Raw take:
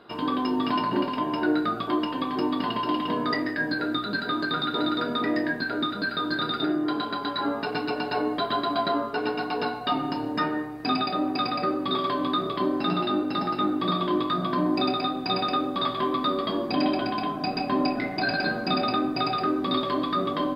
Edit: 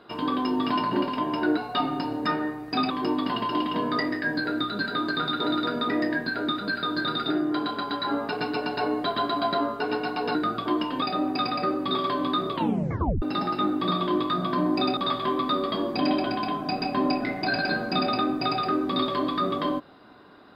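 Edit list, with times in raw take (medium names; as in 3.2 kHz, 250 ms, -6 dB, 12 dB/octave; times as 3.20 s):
1.57–2.24 s: swap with 9.69–11.02 s
12.53 s: tape stop 0.69 s
14.97–15.72 s: delete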